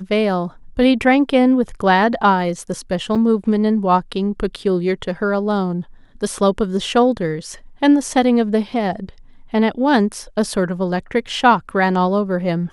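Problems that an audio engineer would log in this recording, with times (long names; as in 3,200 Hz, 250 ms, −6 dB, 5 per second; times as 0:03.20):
0:03.15–0:03.16: drop-out 5.7 ms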